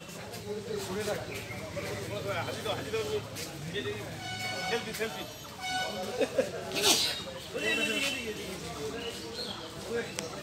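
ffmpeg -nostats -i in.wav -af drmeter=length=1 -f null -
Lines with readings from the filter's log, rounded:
Channel 1: DR: 16.9
Overall DR: 16.9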